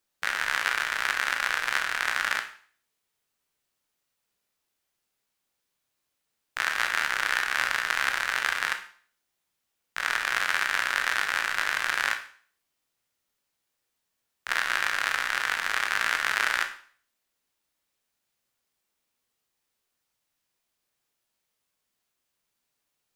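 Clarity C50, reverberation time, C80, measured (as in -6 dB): 10.5 dB, 0.50 s, 14.5 dB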